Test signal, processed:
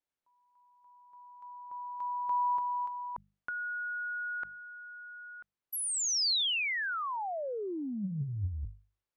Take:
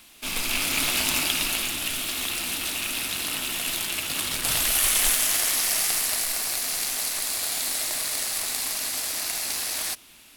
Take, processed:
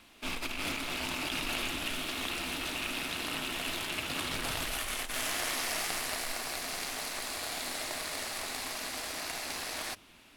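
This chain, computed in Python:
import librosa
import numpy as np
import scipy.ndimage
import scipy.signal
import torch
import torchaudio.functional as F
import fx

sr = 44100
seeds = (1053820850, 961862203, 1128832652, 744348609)

y = fx.lowpass(x, sr, hz=1800.0, slope=6)
y = fx.hum_notches(y, sr, base_hz=50, count=4)
y = fx.over_compress(y, sr, threshold_db=-33.0, ratio=-1.0)
y = y * 10.0 ** (-1.0 / 20.0)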